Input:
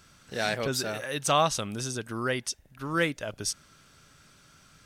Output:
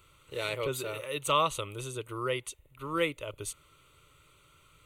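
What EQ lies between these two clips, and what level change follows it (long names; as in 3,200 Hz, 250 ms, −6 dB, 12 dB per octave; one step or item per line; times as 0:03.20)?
phaser with its sweep stopped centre 1,100 Hz, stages 8
0.0 dB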